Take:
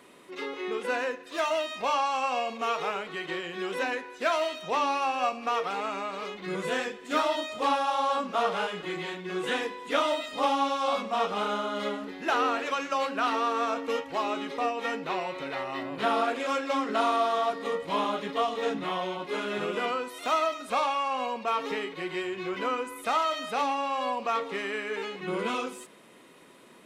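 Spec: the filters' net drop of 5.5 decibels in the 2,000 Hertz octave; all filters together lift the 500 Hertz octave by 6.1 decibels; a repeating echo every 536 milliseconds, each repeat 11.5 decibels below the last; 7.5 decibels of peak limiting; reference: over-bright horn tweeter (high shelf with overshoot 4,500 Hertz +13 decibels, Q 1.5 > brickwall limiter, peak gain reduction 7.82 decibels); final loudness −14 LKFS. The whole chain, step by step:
parametric band 500 Hz +8 dB
parametric band 2,000 Hz −5.5 dB
brickwall limiter −17 dBFS
high shelf with overshoot 4,500 Hz +13 dB, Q 1.5
repeating echo 536 ms, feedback 27%, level −11.5 dB
level +16.5 dB
brickwall limiter −4.5 dBFS

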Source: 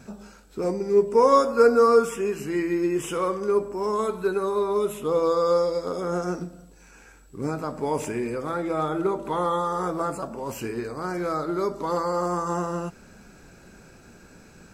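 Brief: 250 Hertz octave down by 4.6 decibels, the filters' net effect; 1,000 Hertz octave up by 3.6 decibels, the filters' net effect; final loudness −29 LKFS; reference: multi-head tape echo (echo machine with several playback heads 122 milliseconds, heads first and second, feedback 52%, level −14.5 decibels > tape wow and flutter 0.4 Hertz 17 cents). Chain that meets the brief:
parametric band 250 Hz −8 dB
parametric band 1,000 Hz +4.5 dB
echo machine with several playback heads 122 ms, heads first and second, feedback 52%, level −14.5 dB
tape wow and flutter 0.4 Hz 17 cents
level −5 dB

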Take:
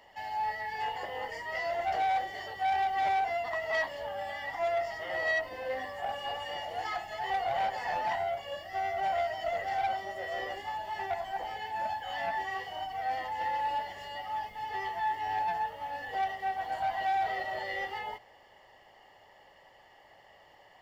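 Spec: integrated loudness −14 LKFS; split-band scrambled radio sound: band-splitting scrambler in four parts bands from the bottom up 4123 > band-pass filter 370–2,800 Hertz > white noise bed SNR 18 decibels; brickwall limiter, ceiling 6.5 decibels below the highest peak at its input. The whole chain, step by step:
brickwall limiter −27.5 dBFS
band-splitting scrambler in four parts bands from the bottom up 4123
band-pass filter 370–2,800 Hz
white noise bed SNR 18 dB
level +21 dB

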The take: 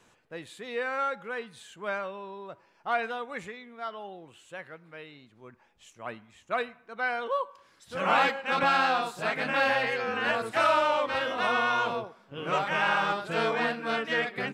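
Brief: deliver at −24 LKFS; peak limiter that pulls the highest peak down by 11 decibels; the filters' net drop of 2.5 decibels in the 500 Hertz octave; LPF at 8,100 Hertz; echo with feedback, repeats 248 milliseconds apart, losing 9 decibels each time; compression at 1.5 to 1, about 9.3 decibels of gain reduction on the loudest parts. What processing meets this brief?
low-pass filter 8,100 Hz
parametric band 500 Hz −3 dB
downward compressor 1.5 to 1, threshold −47 dBFS
brickwall limiter −31.5 dBFS
repeating echo 248 ms, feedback 35%, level −9 dB
level +17.5 dB

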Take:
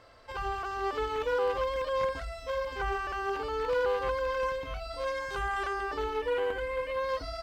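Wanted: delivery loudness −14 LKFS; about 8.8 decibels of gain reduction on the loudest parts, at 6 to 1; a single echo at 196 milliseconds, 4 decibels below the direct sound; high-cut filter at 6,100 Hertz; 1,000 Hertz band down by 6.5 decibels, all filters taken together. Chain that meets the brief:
low-pass filter 6,100 Hz
parametric band 1,000 Hz −8 dB
downward compressor 6 to 1, threshold −37 dBFS
single-tap delay 196 ms −4 dB
level +25 dB

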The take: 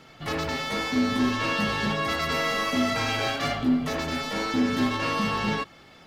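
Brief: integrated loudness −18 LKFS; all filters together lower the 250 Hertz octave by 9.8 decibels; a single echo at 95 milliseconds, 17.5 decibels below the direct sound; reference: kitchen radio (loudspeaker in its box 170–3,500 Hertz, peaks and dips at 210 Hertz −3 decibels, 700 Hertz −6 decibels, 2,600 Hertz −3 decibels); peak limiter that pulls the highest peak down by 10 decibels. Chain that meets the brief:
parametric band 250 Hz −8.5 dB
brickwall limiter −25.5 dBFS
loudspeaker in its box 170–3,500 Hz, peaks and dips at 210 Hz −3 dB, 700 Hz −6 dB, 2,600 Hz −3 dB
single-tap delay 95 ms −17.5 dB
level +17.5 dB

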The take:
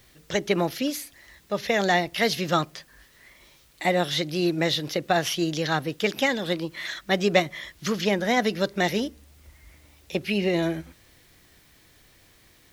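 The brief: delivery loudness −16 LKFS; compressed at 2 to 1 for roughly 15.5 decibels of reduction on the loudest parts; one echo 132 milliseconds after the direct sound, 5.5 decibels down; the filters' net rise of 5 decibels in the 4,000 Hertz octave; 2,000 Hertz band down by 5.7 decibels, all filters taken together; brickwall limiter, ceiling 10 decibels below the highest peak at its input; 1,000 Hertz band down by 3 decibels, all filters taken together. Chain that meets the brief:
parametric band 1,000 Hz −3.5 dB
parametric band 2,000 Hz −8 dB
parametric band 4,000 Hz +8.5 dB
downward compressor 2 to 1, threshold −45 dBFS
brickwall limiter −31 dBFS
single-tap delay 132 ms −5.5 dB
level +25 dB

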